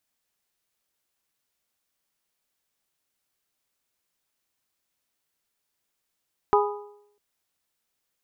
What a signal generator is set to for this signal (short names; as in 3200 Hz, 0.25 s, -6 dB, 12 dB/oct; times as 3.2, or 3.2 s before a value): metal hit bell, length 0.65 s, lowest mode 413 Hz, modes 4, decay 0.75 s, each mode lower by 1.5 dB, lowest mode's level -17 dB